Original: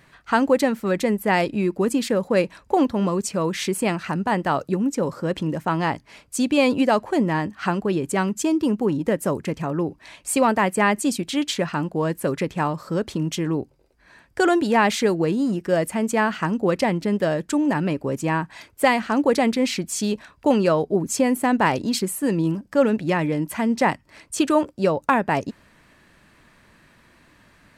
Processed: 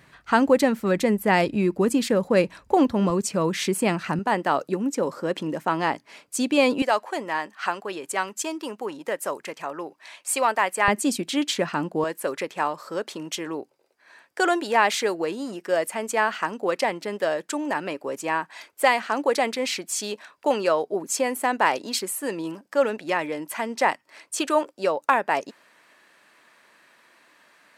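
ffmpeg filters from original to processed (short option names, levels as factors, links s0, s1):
-af "asetnsamples=n=441:p=0,asendcmd='3.1 highpass f 110;4.19 highpass f 270;6.82 highpass f 650;10.88 highpass f 220;12.04 highpass f 480',highpass=41"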